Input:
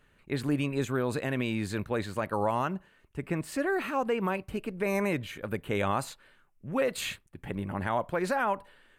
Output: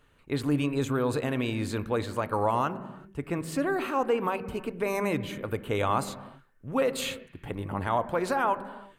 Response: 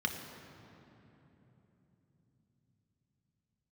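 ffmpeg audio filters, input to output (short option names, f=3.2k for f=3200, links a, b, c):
-filter_complex "[0:a]asplit=2[a][b];[b]highpass=130,lowpass=2.2k[c];[1:a]atrim=start_sample=2205,afade=t=out:st=0.44:d=0.01,atrim=end_sample=19845[d];[c][d]afir=irnorm=-1:irlink=0,volume=-12dB[e];[a][e]amix=inputs=2:normalize=0,volume=1.5dB"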